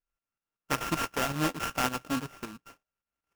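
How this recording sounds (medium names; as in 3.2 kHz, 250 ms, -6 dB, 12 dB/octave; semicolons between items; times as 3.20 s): a buzz of ramps at a fixed pitch in blocks of 32 samples; tremolo saw up 5.3 Hz, depth 65%; aliases and images of a low sample rate 4.1 kHz, jitter 20%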